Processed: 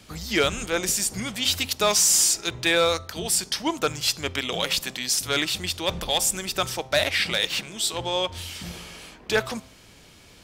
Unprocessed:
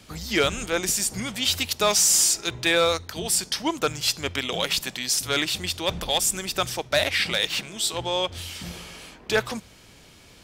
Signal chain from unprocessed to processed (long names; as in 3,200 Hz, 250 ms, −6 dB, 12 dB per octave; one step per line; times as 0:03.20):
hum removal 131.2 Hz, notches 10